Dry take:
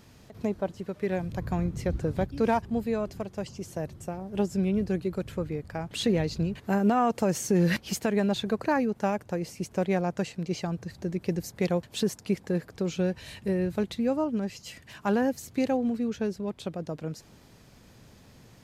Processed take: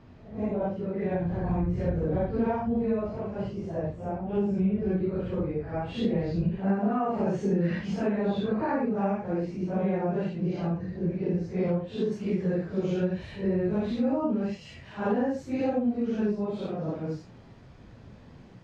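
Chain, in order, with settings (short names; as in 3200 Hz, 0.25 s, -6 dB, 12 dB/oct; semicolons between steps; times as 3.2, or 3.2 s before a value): phase scrambler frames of 0.2 s; compressor 4:1, threshold -27 dBFS, peak gain reduction 8 dB; tape spacing loss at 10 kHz 36 dB, from 9.56 s at 10 kHz 41 dB, from 12.11 s at 10 kHz 26 dB; gain +5 dB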